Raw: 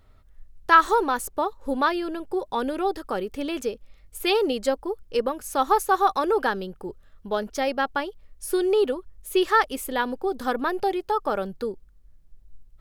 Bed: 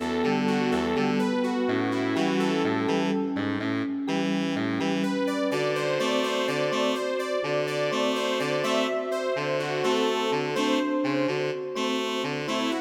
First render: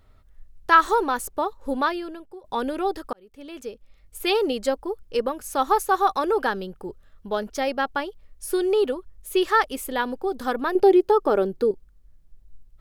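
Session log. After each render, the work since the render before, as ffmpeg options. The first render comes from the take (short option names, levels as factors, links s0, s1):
-filter_complex "[0:a]asettb=1/sr,asplit=3[s0][s1][s2];[s0]atrim=end=10.754[s3];[s1]atrim=start=10.75:end=11.71,asetpts=PTS-STARTPTS,afade=t=in:d=0.004:c=qsin,afade=t=out:st=0.956:d=0.004:c=qsin,equalizer=f=370:w=1.5:g=12[s4];[s2]atrim=start=11.706[s5];[s3][s4]acrossfade=d=0.004:c1=hsin:c2=qsin[s6];[s6][s5]acrossfade=d=0.004:c1=qsin:c2=hsin,asplit=3[s7][s8][s9];[s7]atrim=end=2.44,asetpts=PTS-STARTPTS,afade=t=out:st=1.78:d=0.66:silence=0.0707946[s10];[s8]atrim=start=2.44:end=3.13,asetpts=PTS-STARTPTS,afade=t=in:d=0.004:c=hsin:silence=0.0707946,afade=t=out:st=0.686:d=0.004:c=hsin[s11];[s9]atrim=start=3.13,asetpts=PTS-STARTPTS,afade=t=in:d=1.17[s12];[s10][s11][s12]concat=n=3:v=0:a=1"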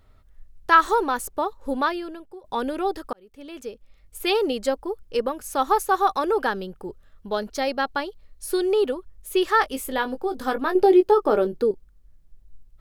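-filter_complex "[0:a]asettb=1/sr,asplit=3[s0][s1][s2];[s0]atrim=end=7.284[s3];[s1]atrim=start=7.28:end=8.61,asetpts=PTS-STARTPTS,afade=t=in:d=0.004:c=qsin,afade=t=out:st=1.326:d=0.004:c=qsin,equalizer=f=4200:t=o:w=0.21:g=8[s4];[s2]atrim=start=8.606[s5];[s3][s4]acrossfade=d=0.004:c1=hsin:c2=qsin[s6];[s6][s5]acrossfade=d=0.004:c1=qsin:c2=hsin,asettb=1/sr,asplit=3[s7][s8][s9];[s7]atrim=end=9.594[s10];[s8]atrim=start=9.59:end=11.58,asetpts=PTS-STARTPTS,afade=t=in:d=0.004:c=qsin,afade=t=out:st=1.986:d=0.004:c=qsin,asplit=2[s11][s12];[s12]adelay=19,volume=0.398[s13];[s11][s13]amix=inputs=2:normalize=0,atrim=end_sample=87759[s14];[s9]atrim=start=11.576[s15];[s10][s14]acrossfade=d=0.004:c1=hsin:c2=qsin[s16];[s16][s15]acrossfade=d=0.004:c1=qsin:c2=hsin"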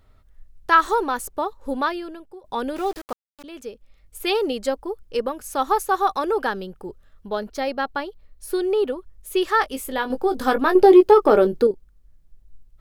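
-filter_complex "[0:a]asettb=1/sr,asplit=3[s0][s1][s2];[s0]atrim=end=2.764[s3];[s1]atrim=start=2.76:end=3.44,asetpts=PTS-STARTPTS,afade=t=in:d=0.004:c=qsin,afade=t=out:st=0.676:d=0.004:c=qsin,aeval=exprs='val(0)*gte(abs(val(0)),0.0168)':c=same[s4];[s2]atrim=start=3.436[s5];[s3][s4]acrossfade=d=0.004:c1=hsin:c2=qsin[s6];[s6][s5]acrossfade=d=0.004:c1=qsin:c2=hsin,asettb=1/sr,asplit=3[s7][s8][s9];[s7]atrim=end=7.284[s10];[s8]atrim=start=7.28:end=8.98,asetpts=PTS-STARTPTS,afade=t=in:d=0.004:c=qsin,afade=t=out:st=1.696:d=0.004:c=qsin,equalizer=f=6900:t=o:w=2.1:g=-5[s11];[s9]atrim=start=8.976[s12];[s10][s11]acrossfade=d=0.004:c1=hsin:c2=qsin[s13];[s13][s12]acrossfade=d=0.004:c1=qsin:c2=hsin,asettb=1/sr,asplit=3[s14][s15][s16];[s14]atrim=end=10.104[s17];[s15]atrim=start=10.1:end=11.67,asetpts=PTS-STARTPTS,afade=t=in:d=0.004:c=qsin,afade=t=out:st=1.566:d=0.004:c=qsin,acontrast=38[s18];[s16]atrim=start=11.666[s19];[s17][s18]acrossfade=d=0.004:c1=hsin:c2=qsin[s20];[s20][s19]acrossfade=d=0.004:c1=qsin:c2=hsin"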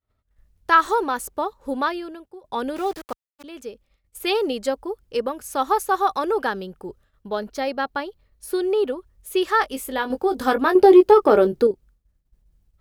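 -af "agate=range=0.0224:threshold=0.00708:ratio=3:detection=peak,highpass=41"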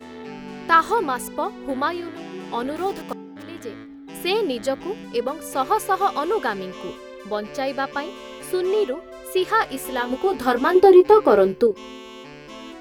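-filter_complex "[1:a]volume=0.266[s0];[0:a][s0]amix=inputs=2:normalize=0"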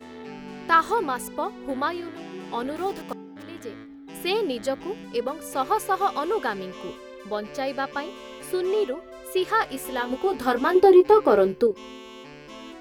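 -af "volume=0.708"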